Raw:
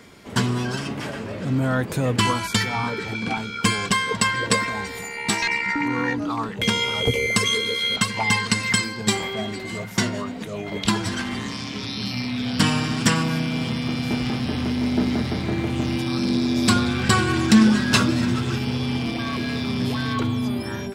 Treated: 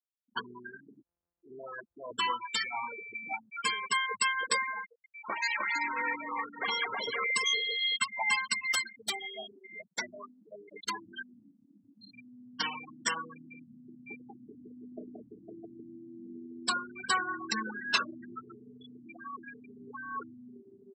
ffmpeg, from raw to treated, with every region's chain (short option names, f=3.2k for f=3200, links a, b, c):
-filter_complex "[0:a]asettb=1/sr,asplit=3[a][b][c];[a]atrim=end=1.034[d];[b]atrim=start=1.03:end=2.11,asetpts=PTS-STARTPTS,afade=t=in:d=0.004:c=qsin,afade=t=out:st=1.076:d=0.004:c=qsin,asubboost=boost=7.5:cutoff=110,aeval=exprs='abs(val(0))':c=same[e];[c]atrim=start=2.106[f];[d][e]acrossfade=d=0.004:c1=hsin:c2=qsin[g];[g][f]acrossfade=d=0.004:c1=qsin:c2=hsin,asettb=1/sr,asplit=3[h][i][j];[h]atrim=end=4.894[k];[i]atrim=start=4.89:end=7.24,asetpts=PTS-STARTPTS,afade=t=in:d=0.004:c=qsin,afade=t=out:st=2.346:d=0.004:c=qsin,acrusher=samples=9:mix=1:aa=0.000001:lfo=1:lforange=9:lforate=3.1,aecho=1:1:310|542.5|716.9|847.7|945.7:0.631|0.398|0.251|0.158|0.1,atrim=end_sample=103635[l];[j]atrim=start=7.236[m];[k][l]acrossfade=d=0.004:c1=hsin:c2=qsin[n];[n][m]acrossfade=d=0.004:c1=qsin:c2=hsin,asettb=1/sr,asplit=3[o][p][q];[o]atrim=end=8.704[r];[p]atrim=start=8.7:end=11.23,asetpts=PTS-STARTPTS,afade=t=in:d=0.004:c=qsin,afade=t=out:st=2.526:d=0.004:c=qsin,aeval=exprs='(mod(3.16*val(0)+1,2)-1)/3.16':c=same,asplit=6[s][t][u][v][w][x];[t]adelay=121,afreqshift=50,volume=-15dB[y];[u]adelay=242,afreqshift=100,volume=-20.2dB[z];[v]adelay=363,afreqshift=150,volume=-25.4dB[aa];[w]adelay=484,afreqshift=200,volume=-30.6dB[ab];[x]adelay=605,afreqshift=250,volume=-35.8dB[ac];[s][y][z][aa][ab][ac]amix=inputs=6:normalize=0,atrim=end_sample=111573[ad];[q]atrim=start=11.226[ae];[r][ad]acrossfade=d=0.004:c1=hsin:c2=qsin[af];[af][ae]acrossfade=d=0.004:c1=qsin:c2=hsin,afftfilt=real='re*gte(hypot(re,im),0.158)':imag='im*gte(hypot(re,im),0.158)':win_size=1024:overlap=0.75,highpass=730,volume=-6dB"